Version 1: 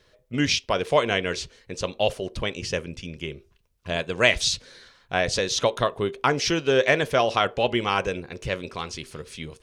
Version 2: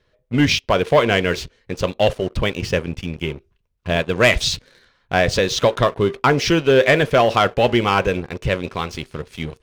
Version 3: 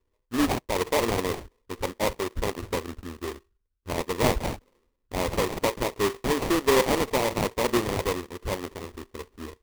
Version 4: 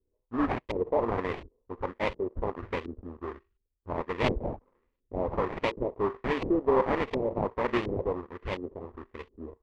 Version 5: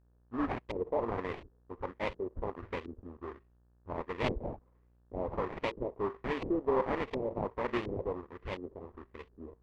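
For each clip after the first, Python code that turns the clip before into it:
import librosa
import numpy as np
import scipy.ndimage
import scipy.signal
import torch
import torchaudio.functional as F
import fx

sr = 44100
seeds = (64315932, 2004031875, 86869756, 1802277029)

y1 = fx.bass_treble(x, sr, bass_db=3, treble_db=-8)
y1 = fx.leveller(y1, sr, passes=2)
y2 = fx.env_lowpass(y1, sr, base_hz=400.0, full_db=-12.5)
y2 = fx.fixed_phaser(y2, sr, hz=360.0, stages=4)
y2 = fx.sample_hold(y2, sr, seeds[0], rate_hz=1500.0, jitter_pct=20)
y2 = y2 * librosa.db_to_amplitude(-5.5)
y3 = fx.filter_lfo_lowpass(y2, sr, shape='saw_up', hz=1.4, low_hz=340.0, high_hz=3200.0, q=1.6)
y3 = y3 * librosa.db_to_amplitude(-4.5)
y4 = fx.dmg_buzz(y3, sr, base_hz=60.0, harmonics=30, level_db=-61.0, tilt_db=-8, odd_only=False)
y4 = y4 * librosa.db_to_amplitude(-5.5)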